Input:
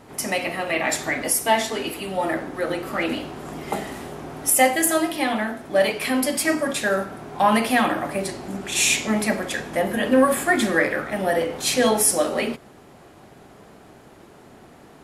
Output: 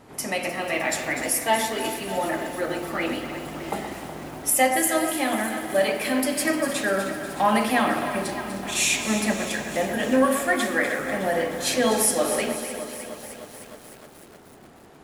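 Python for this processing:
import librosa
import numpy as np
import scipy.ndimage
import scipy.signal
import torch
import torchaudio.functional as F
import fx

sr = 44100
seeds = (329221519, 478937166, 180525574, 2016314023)

y = fx.low_shelf(x, sr, hz=260.0, db=-10.0, at=(10.26, 10.99))
y = fx.echo_alternate(y, sr, ms=123, hz=2200.0, feedback_pct=73, wet_db=-8)
y = fx.echo_crushed(y, sr, ms=306, feedback_pct=80, bits=6, wet_db=-13.0)
y = F.gain(torch.from_numpy(y), -3.0).numpy()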